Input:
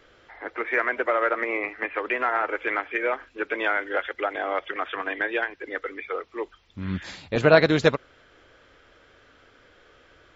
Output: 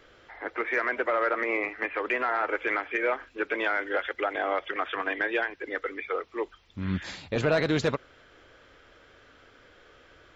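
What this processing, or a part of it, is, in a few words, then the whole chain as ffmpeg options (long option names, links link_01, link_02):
soft clipper into limiter: -af "asoftclip=type=tanh:threshold=-9dB,alimiter=limit=-17dB:level=0:latency=1:release=22"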